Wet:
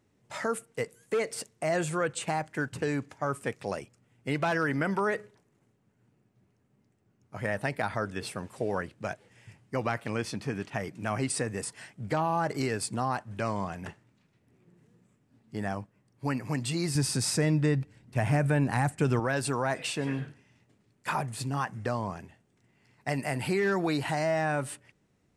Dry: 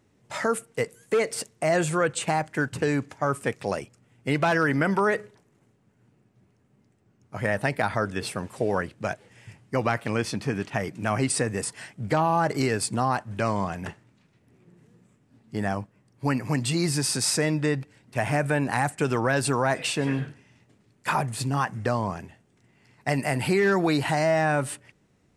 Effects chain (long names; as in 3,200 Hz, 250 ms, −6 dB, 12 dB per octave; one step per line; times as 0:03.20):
0:16.95–0:19.20: low-shelf EQ 210 Hz +11.5 dB
level −5.5 dB